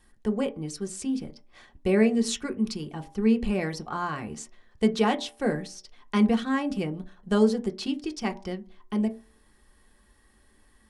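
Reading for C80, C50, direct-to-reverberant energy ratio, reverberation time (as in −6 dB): 22.5 dB, 18.5 dB, 3.5 dB, 0.45 s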